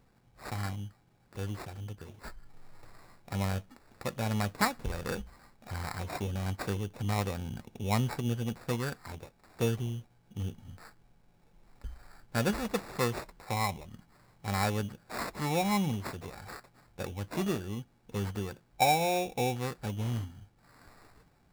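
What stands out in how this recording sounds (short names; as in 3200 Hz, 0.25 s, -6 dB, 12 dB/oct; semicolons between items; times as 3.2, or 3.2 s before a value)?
aliases and images of a low sample rate 3100 Hz, jitter 0%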